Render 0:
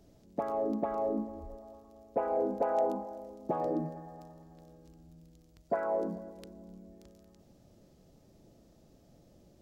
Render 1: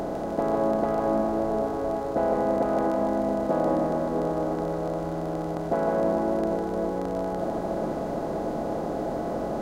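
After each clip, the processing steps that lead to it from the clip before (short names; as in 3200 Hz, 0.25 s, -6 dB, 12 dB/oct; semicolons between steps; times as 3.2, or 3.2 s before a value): per-bin compression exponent 0.2; split-band echo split 480 Hz, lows 0.406 s, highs 0.153 s, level -5.5 dB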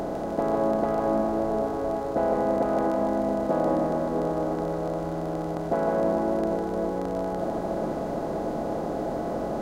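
nothing audible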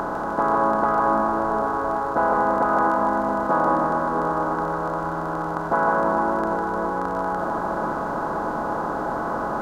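band shelf 1200 Hz +15.5 dB 1.1 oct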